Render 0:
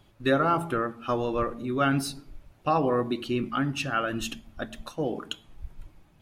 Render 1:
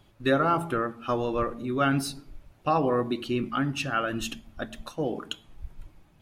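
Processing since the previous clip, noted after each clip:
no processing that can be heard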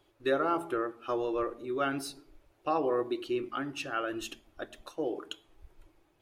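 low shelf with overshoot 270 Hz −7.5 dB, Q 3
level −6.5 dB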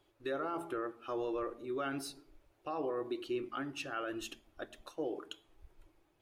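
brickwall limiter −24 dBFS, peak gain reduction 7.5 dB
level −4 dB

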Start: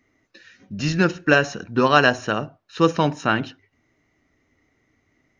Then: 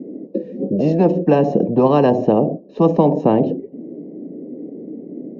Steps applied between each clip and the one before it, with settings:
elliptic band-pass filter 180–520 Hz, stop band 50 dB
every bin compressed towards the loudest bin 4 to 1
level +5.5 dB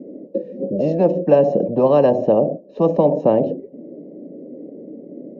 parametric band 570 Hz +11.5 dB 0.33 octaves
level −5 dB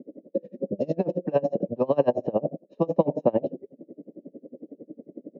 tremolo with a sine in dB 11 Hz, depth 29 dB
level −2.5 dB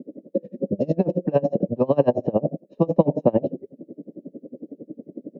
low-shelf EQ 260 Hz +9 dB
level +1 dB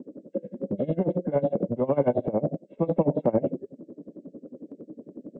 hearing-aid frequency compression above 1,300 Hz 1.5 to 1
transient designer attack −7 dB, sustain +1 dB

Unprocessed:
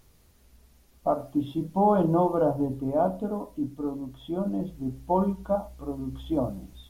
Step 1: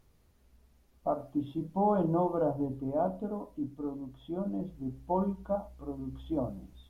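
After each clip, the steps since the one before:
high-shelf EQ 2,900 Hz −7.5 dB
level −5.5 dB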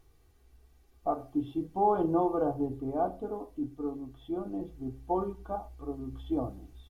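comb filter 2.6 ms, depth 63%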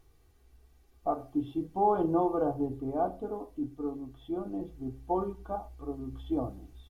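no processing that can be heard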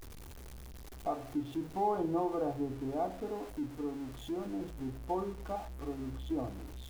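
converter with a step at zero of −41.5 dBFS
in parallel at 0 dB: downward compressor, threshold −35 dBFS, peak gain reduction 13.5 dB
on the sum: level −8 dB

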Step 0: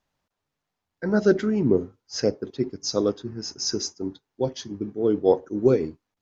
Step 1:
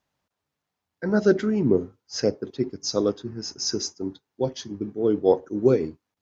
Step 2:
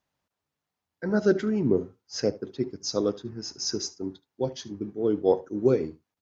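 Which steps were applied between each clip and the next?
high-pass filter 54 Hz
single-tap delay 74 ms −20 dB; level −3 dB

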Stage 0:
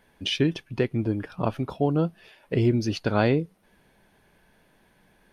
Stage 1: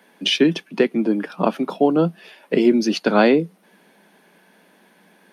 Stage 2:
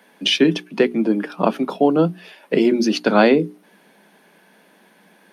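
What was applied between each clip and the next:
Butterworth high-pass 170 Hz 72 dB per octave; level +8 dB
mains-hum notches 60/120/180/240/300/360/420 Hz; level +1.5 dB

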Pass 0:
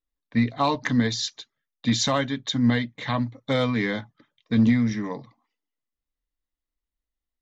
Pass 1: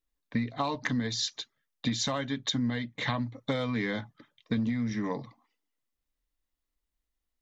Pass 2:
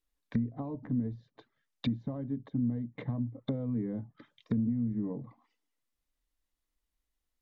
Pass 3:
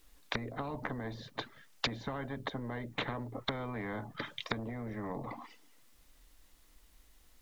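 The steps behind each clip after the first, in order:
downward compressor 10 to 1, threshold −29 dBFS, peak gain reduction 14.5 dB; level +2.5 dB
treble cut that deepens with the level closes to 340 Hz, closed at −30.5 dBFS
every bin compressed towards the loudest bin 4 to 1; level +5.5 dB

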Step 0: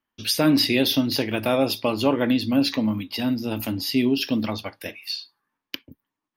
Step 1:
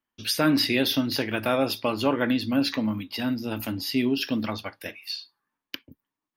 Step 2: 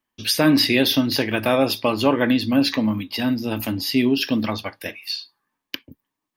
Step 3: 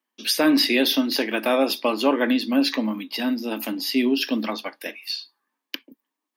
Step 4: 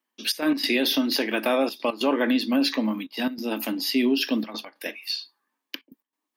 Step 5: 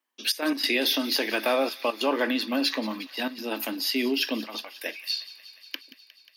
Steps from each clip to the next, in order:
dynamic equaliser 1,500 Hz, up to +7 dB, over −44 dBFS, Q 1.7; level −3.5 dB
notch filter 1,400 Hz, Q 11; level +5.5 dB
Butterworth high-pass 220 Hz 36 dB per octave; level −1.5 dB
gate pattern "xxx.x.xxxxxxx" 142 BPM −12 dB; brickwall limiter −13.5 dBFS, peak gain reduction 7 dB
Bessel high-pass filter 370 Hz, order 2; delay with a high-pass on its return 179 ms, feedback 76%, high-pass 1,600 Hz, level −16.5 dB

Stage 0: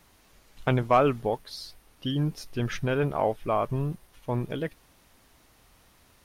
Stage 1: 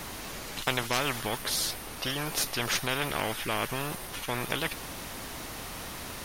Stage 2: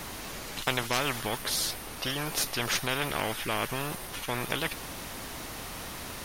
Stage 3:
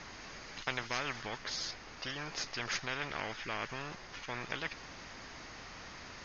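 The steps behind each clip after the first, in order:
every bin compressed towards the loudest bin 4 to 1
no processing that can be heard
Chebyshev low-pass with heavy ripple 6,700 Hz, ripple 6 dB; level −4.5 dB

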